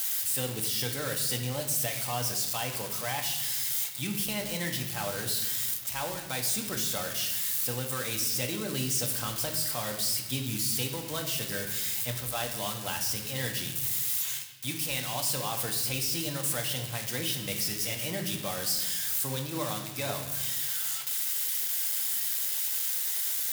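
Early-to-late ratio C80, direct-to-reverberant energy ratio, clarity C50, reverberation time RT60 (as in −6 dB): 9.5 dB, 2.5 dB, 7.5 dB, 1.0 s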